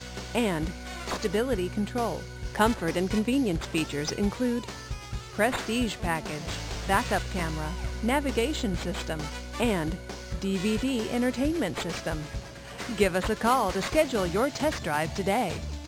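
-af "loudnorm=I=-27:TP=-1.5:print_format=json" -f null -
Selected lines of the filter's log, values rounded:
"input_i" : "-28.2",
"input_tp" : "-9.8",
"input_lra" : "2.8",
"input_thresh" : "-38.3",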